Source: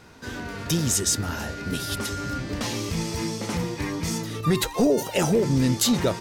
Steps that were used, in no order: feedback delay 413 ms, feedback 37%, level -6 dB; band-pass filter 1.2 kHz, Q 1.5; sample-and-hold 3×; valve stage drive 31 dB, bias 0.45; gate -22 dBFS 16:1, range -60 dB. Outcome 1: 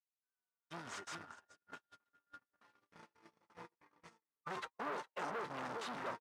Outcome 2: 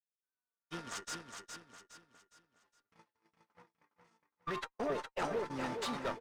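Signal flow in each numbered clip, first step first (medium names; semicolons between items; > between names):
feedback delay > gate > sample-and-hold > valve stage > band-pass filter; gate > sample-and-hold > band-pass filter > valve stage > feedback delay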